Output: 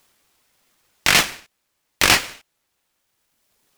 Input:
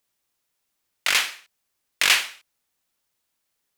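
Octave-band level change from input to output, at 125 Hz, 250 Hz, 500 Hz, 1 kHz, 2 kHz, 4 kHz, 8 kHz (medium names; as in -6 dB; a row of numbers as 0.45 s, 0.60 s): no reading, +19.5 dB, +12.0 dB, +8.0 dB, +3.5 dB, +3.0 dB, +5.0 dB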